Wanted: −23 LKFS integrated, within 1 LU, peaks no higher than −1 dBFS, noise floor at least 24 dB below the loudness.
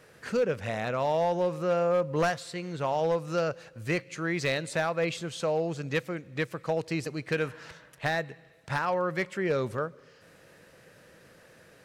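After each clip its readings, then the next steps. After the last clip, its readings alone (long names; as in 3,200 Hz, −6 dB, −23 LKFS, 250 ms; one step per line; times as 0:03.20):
share of clipped samples 0.7%; peaks flattened at −20.0 dBFS; integrated loudness −30.0 LKFS; sample peak −20.0 dBFS; target loudness −23.0 LKFS
→ clipped peaks rebuilt −20 dBFS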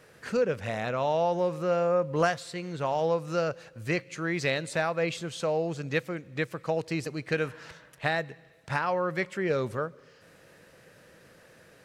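share of clipped samples 0.0%; integrated loudness −29.5 LKFS; sample peak −11.5 dBFS; target loudness −23.0 LKFS
→ level +6.5 dB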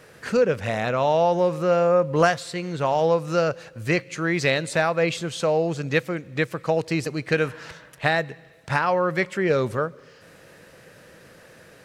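integrated loudness −23.0 LKFS; sample peak −5.0 dBFS; background noise floor −50 dBFS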